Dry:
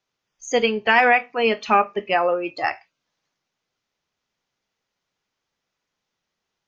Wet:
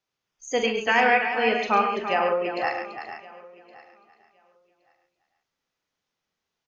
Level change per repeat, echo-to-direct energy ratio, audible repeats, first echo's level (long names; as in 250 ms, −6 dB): repeats not evenly spaced, −2.0 dB, 11, −8.0 dB